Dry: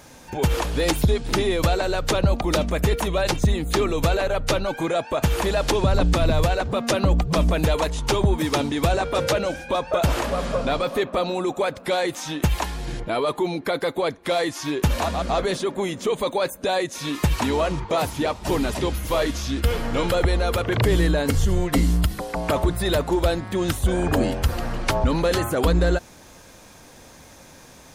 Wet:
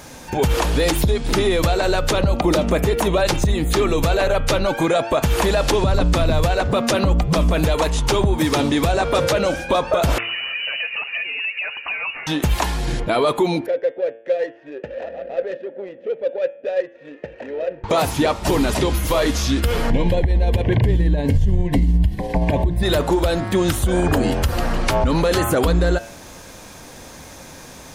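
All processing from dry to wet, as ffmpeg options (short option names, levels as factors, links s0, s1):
-filter_complex "[0:a]asettb=1/sr,asplit=3[s0][s1][s2];[s0]atrim=end=2.394[s3];[s1]atrim=start=2.39:end=3.21,asetpts=PTS-STARTPTS,afade=t=in:d=0.004:c=qsin,afade=t=out:st=0.816:d=0.004:c=qsin,highpass=52,equalizer=f=390:t=o:w=2.4:g=4.5[s4];[s2]atrim=start=3.206[s5];[s3][s4]acrossfade=d=0.004:c1=hsin:c2=qsin[s6];[s6][s5]acrossfade=d=0.004:c1=qsin:c2=hsin,asettb=1/sr,asplit=3[s7][s8][s9];[s7]atrim=end=10.184[s10];[s8]atrim=start=10.18:end=12.27,asetpts=PTS-STARTPTS,afade=t=in:d=0.004:c=qsin,afade=t=out:st=2.086:d=0.004:c=qsin,aphaser=in_gain=1:out_gain=1:delay=1.7:decay=0.39:speed=1.5:type=sinusoidal,acompressor=threshold=0.0316:ratio=6:attack=3.2:release=140:knee=1:detection=peak,lowpass=f=2600:t=q:w=0.5098,lowpass=f=2600:t=q:w=0.6013,lowpass=f=2600:t=q:w=0.9,lowpass=f=2600:t=q:w=2.563,afreqshift=-3000[s11];[s9]atrim=start=12.266[s12];[s10][s11]acrossfade=d=0.004:c1=hsin:c2=qsin[s13];[s13][s12]acrossfade=d=0.004:c1=qsin:c2=hsin,asettb=1/sr,asplit=3[s14][s15][s16];[s14]atrim=end=13.664[s17];[s15]atrim=start=13.66:end=17.84,asetpts=PTS-STARTPTS,afade=t=in:d=0.004:c=qsin,afade=t=out:st=4.176:d=0.004:c=qsin,asplit=3[s18][s19][s20];[s18]bandpass=f=530:t=q:w=8,volume=1[s21];[s19]bandpass=f=1840:t=q:w=8,volume=0.501[s22];[s20]bandpass=f=2480:t=q:w=8,volume=0.355[s23];[s21][s22][s23]amix=inputs=3:normalize=0,adynamicsmooth=sensitivity=3:basefreq=1100[s24];[s16]atrim=start=17.836[s25];[s17][s24]acrossfade=d=0.004:c1=hsin:c2=qsin[s26];[s26][s25]acrossfade=d=0.004:c1=qsin:c2=hsin,asettb=1/sr,asplit=3[s27][s28][s29];[s27]atrim=end=19.904[s30];[s28]atrim=start=19.9:end=22.83,asetpts=PTS-STARTPTS,afade=t=in:d=0.004:c=qsin,afade=t=out:st=2.926:d=0.004:c=qsin,asuperstop=centerf=1300:order=4:qfactor=2.2,bass=f=250:g=10,treble=f=4000:g=-11,tremolo=f=17:d=0.33[s31];[s29]atrim=start=22.826[s32];[s30][s31]acrossfade=d=0.004:c1=hsin:c2=qsin[s33];[s33][s32]acrossfade=d=0.004:c1=qsin:c2=hsin,bandreject=f=113.6:t=h:w=4,bandreject=f=227.2:t=h:w=4,bandreject=f=340.8:t=h:w=4,bandreject=f=454.4:t=h:w=4,bandreject=f=568:t=h:w=4,bandreject=f=681.6:t=h:w=4,bandreject=f=795.2:t=h:w=4,bandreject=f=908.8:t=h:w=4,bandreject=f=1022.4:t=h:w=4,bandreject=f=1136:t=h:w=4,bandreject=f=1249.6:t=h:w=4,bandreject=f=1363.2:t=h:w=4,bandreject=f=1476.8:t=h:w=4,bandreject=f=1590.4:t=h:w=4,bandreject=f=1704:t=h:w=4,bandreject=f=1817.6:t=h:w=4,bandreject=f=1931.2:t=h:w=4,bandreject=f=2044.8:t=h:w=4,bandreject=f=2158.4:t=h:w=4,bandreject=f=2272:t=h:w=4,bandreject=f=2385.6:t=h:w=4,bandreject=f=2499.2:t=h:w=4,bandreject=f=2612.8:t=h:w=4,bandreject=f=2726.4:t=h:w=4,bandreject=f=2840:t=h:w=4,bandreject=f=2953.6:t=h:w=4,bandreject=f=3067.2:t=h:w=4,bandreject=f=3180.8:t=h:w=4,bandreject=f=3294.4:t=h:w=4,bandreject=f=3408:t=h:w=4,bandreject=f=3521.6:t=h:w=4,acompressor=threshold=0.1:ratio=6,alimiter=level_in=5.62:limit=0.891:release=50:level=0:latency=1,volume=0.422"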